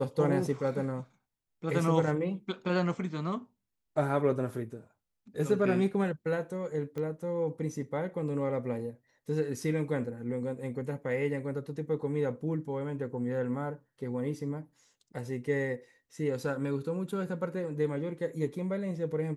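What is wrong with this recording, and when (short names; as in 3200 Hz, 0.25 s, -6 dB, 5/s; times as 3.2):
6.98 pop -26 dBFS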